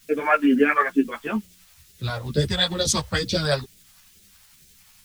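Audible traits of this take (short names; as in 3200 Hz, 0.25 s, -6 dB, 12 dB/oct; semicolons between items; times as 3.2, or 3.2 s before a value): a quantiser's noise floor 10-bit, dither triangular; phasing stages 2, 2.2 Hz, lowest notch 300–1000 Hz; tremolo saw up 11 Hz, depth 35%; a shimmering, thickened sound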